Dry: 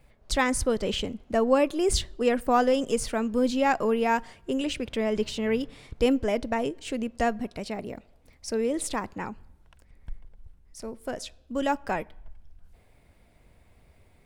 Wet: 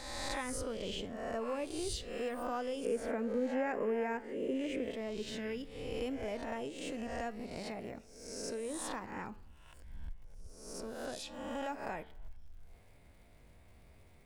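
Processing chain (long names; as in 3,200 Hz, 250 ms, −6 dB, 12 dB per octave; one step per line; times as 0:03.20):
peak hold with a rise ahead of every peak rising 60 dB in 0.82 s
0:02.85–0:04.91: graphic EQ with 10 bands 250 Hz +9 dB, 500 Hz +11 dB, 2,000 Hz +11 dB, 4,000 Hz −8 dB
downward compressor 2.5 to 1, threshold −37 dBFS, peak gain reduction 19.5 dB
flanger 0.78 Hz, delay 8.2 ms, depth 4.8 ms, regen −83%
surface crackle 130 per second −59 dBFS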